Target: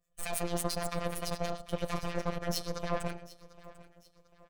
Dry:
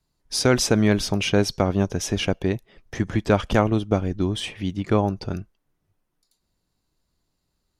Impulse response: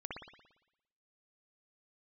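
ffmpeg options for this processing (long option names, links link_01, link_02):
-filter_complex "[0:a]asplit=2[link_01][link_02];[1:a]atrim=start_sample=2205[link_03];[link_02][link_03]afir=irnorm=-1:irlink=0,volume=-4.5dB[link_04];[link_01][link_04]amix=inputs=2:normalize=0,alimiter=limit=-10dB:level=0:latency=1:release=21,aecho=1:1:2.9:0.88,areverse,acompressor=threshold=-25dB:ratio=8,areverse,aeval=exprs='0.141*(cos(1*acos(clip(val(0)/0.141,-1,1)))-cos(1*PI/2))+0.0251*(cos(3*acos(clip(val(0)/0.141,-1,1)))-cos(3*PI/2))+0.02*(cos(6*acos(clip(val(0)/0.141,-1,1)))-cos(6*PI/2))':channel_layout=same,acrossover=split=720[link_05][link_06];[link_05]aeval=exprs='val(0)*(1-0.7/2+0.7/2*cos(2*PI*5.3*n/s))':channel_layout=same[link_07];[link_06]aeval=exprs='val(0)*(1-0.7/2-0.7/2*cos(2*PI*5.3*n/s))':channel_layout=same[link_08];[link_07][link_08]amix=inputs=2:normalize=0,asetrate=76440,aresample=44100,aecho=1:1:745|1490|2235:0.112|0.0415|0.0154,afftfilt=real='hypot(re,im)*cos(PI*b)':imag='0':win_size=1024:overlap=0.75,volume=1.5dB"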